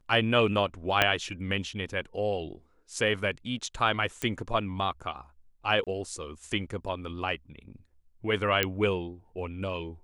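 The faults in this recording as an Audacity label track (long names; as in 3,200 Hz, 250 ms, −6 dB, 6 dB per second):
1.020000	1.020000	click −7 dBFS
4.220000	4.220000	click −16 dBFS
5.840000	5.870000	drop-out 27 ms
8.630000	8.630000	click −9 dBFS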